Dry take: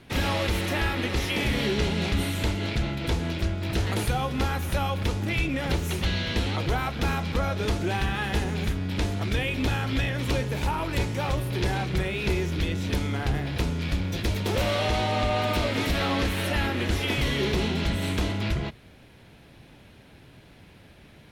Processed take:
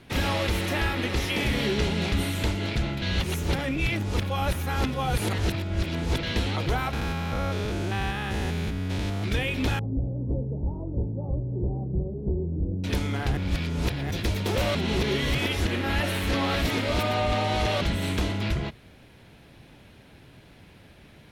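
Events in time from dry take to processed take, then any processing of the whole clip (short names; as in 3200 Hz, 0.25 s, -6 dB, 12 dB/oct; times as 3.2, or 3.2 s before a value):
3.02–6.23 reverse
6.93–9.24 stepped spectrum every 0.2 s
9.79–12.84 Gaussian blur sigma 16 samples
13.37–14.11 reverse
14.75–17.81 reverse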